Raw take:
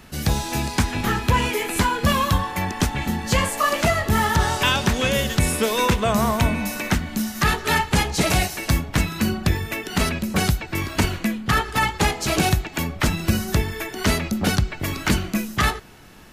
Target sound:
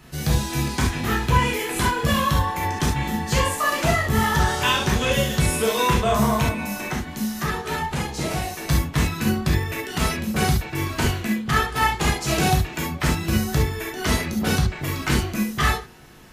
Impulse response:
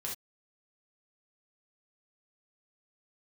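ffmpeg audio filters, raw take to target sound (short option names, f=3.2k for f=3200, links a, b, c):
-filter_complex "[0:a]asettb=1/sr,asplit=3[a][b][c];[a]atrim=end=6.444[d];[b]atrim=start=6.44:end=8.69,asetpts=PTS-STARTPTS,afade=t=in:d=0.004:c=qsin,afade=t=out:st=2.246:d=0.004:c=qsin,acrossover=split=180|1300[e][f][g];[e]acompressor=threshold=-29dB:ratio=4[h];[f]acompressor=threshold=-25dB:ratio=4[i];[g]acompressor=threshold=-31dB:ratio=4[j];[h][i][j]amix=inputs=3:normalize=0[k];[c]atrim=start=8.686[l];[d][k]acrossfade=d=0.004:c1=hsin:c2=qsin[m];[m][l]acrossfade=d=0.004:c1=qsin:c2=hsin[n];[1:a]atrim=start_sample=2205,atrim=end_sample=3528[o];[n][o]afir=irnorm=-1:irlink=0,volume=-1dB"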